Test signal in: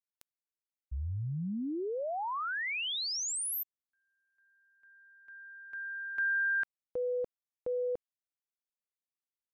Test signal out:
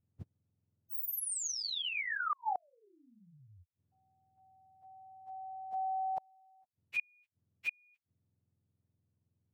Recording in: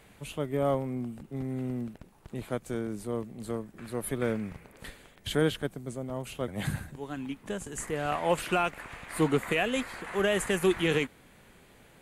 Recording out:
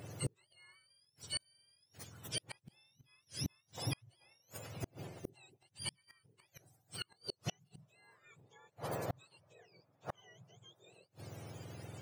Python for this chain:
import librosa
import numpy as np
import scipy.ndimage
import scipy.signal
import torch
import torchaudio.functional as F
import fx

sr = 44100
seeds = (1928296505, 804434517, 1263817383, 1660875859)

y = fx.octave_mirror(x, sr, pivot_hz=1100.0)
y = fx.gate_flip(y, sr, shuts_db=-31.0, range_db=-39)
y = y * librosa.db_to_amplitude(5.5)